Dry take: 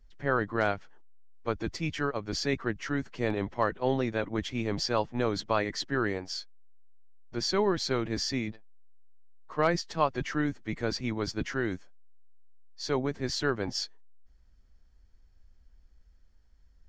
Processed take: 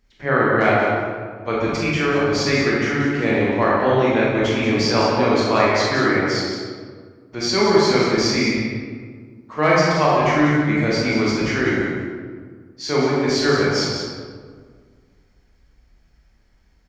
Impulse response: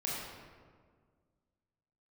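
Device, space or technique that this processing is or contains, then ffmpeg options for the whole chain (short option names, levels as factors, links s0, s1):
PA in a hall: -filter_complex "[0:a]highpass=f=120:p=1,equalizer=f=2200:t=o:w=0.45:g=5,aecho=1:1:181:0.398[s0];[1:a]atrim=start_sample=2205[s1];[s0][s1]afir=irnorm=-1:irlink=0,volume=2.37"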